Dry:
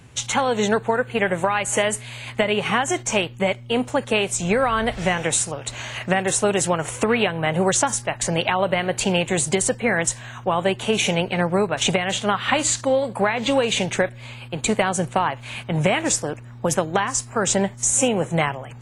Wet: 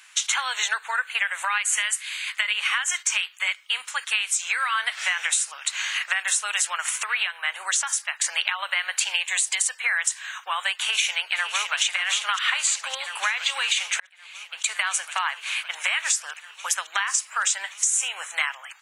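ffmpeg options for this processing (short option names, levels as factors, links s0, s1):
-filter_complex "[0:a]asettb=1/sr,asplit=3[s0][s1][s2];[s0]atrim=end=1.584[s3];[s1]atrim=start=1.58:end=4.75,asetpts=PTS-STARTPTS,afade=t=in:d=0.004:c=qsin,afade=t=out:st=3.166:d=0.004:c=qsin,equalizer=f=670:w=1.5:g=-7[s4];[s2]atrim=start=4.746[s5];[s3][s4]acrossfade=d=0.004:c1=hsin:c2=qsin[s6];[s6][s5]acrossfade=d=0.004:c1=qsin:c2=hsin,asettb=1/sr,asplit=3[s7][s8][s9];[s7]atrim=end=9.114[s10];[s8]atrim=start=9.11:end=9.75,asetpts=PTS-STARTPTS,afade=t=in:d=0.004:c=qsin,afade=t=out:st=0.636:d=0.004:c=qsin,bandreject=f=1400:w=5.1[s11];[s9]atrim=start=9.746[s12];[s10][s11]acrossfade=d=0.004:c1=hsin:c2=qsin[s13];[s13][s12]acrossfade=d=0.004:c1=qsin:c2=hsin,asplit=2[s14][s15];[s15]afade=t=in:st=10.73:d=0.01,afade=t=out:st=11.82:d=0.01,aecho=0:1:560|1120|1680|2240|2800|3360|3920|4480|5040|5600|6160|6720:0.375837|0.30067|0.240536|0.192429|0.153943|0.123154|0.0985235|0.0788188|0.0630551|0.050444|0.0403552|0.0322842[s16];[s14][s16]amix=inputs=2:normalize=0,asplit=4[s17][s18][s19][s20];[s17]atrim=end=6.982[s21];[s18]atrim=start=6.978:end=8.242,asetpts=PTS-STARTPTS,volume=0.668[s22];[s19]atrim=start=8.238:end=14,asetpts=PTS-STARTPTS,afade=t=out:st=5.758:d=0.004:c=hsin[s23];[s20]atrim=start=14,asetpts=PTS-STARTPTS,afade=t=in:d=0.98[s24];[s21][s22]acrossfade=d=0.004:c1=hsin:c2=hsin[s25];[s23][s24]concat=n=2:v=0:a=1[s26];[s25][s26]acrossfade=d=0.004:c1=hsin:c2=hsin,highpass=f=1300:w=0.5412,highpass=f=1300:w=1.3066,acompressor=threshold=0.0501:ratio=6,volume=2"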